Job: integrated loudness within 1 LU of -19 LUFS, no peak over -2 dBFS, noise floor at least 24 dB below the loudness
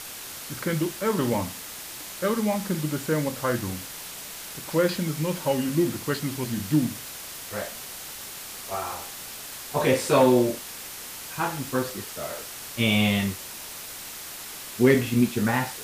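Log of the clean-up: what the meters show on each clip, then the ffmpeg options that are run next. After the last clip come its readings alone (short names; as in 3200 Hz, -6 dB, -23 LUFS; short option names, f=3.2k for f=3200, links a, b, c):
noise floor -39 dBFS; noise floor target -51 dBFS; loudness -27.0 LUFS; peak -6.0 dBFS; loudness target -19.0 LUFS
-> -af "afftdn=nr=12:nf=-39"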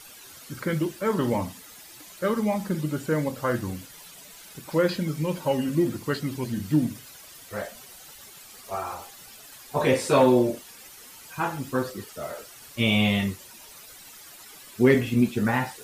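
noise floor -47 dBFS; noise floor target -50 dBFS
-> -af "afftdn=nr=6:nf=-47"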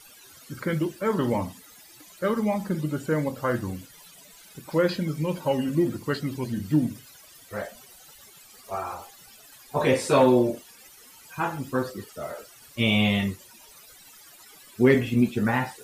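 noise floor -51 dBFS; loudness -26.0 LUFS; peak -6.5 dBFS; loudness target -19.0 LUFS
-> -af "volume=7dB,alimiter=limit=-2dB:level=0:latency=1"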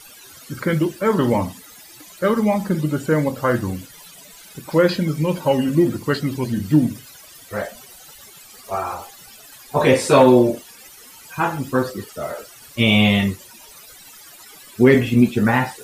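loudness -19.0 LUFS; peak -2.0 dBFS; noise floor -44 dBFS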